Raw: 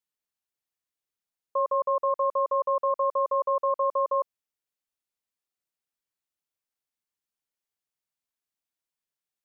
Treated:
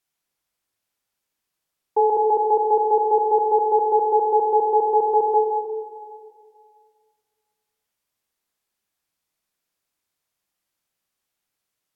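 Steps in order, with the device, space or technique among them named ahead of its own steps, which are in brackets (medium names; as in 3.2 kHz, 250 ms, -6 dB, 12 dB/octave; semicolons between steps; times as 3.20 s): slowed and reverbed (tape speed -21%; reverberation RT60 2.1 s, pre-delay 18 ms, DRR 1 dB); trim +7.5 dB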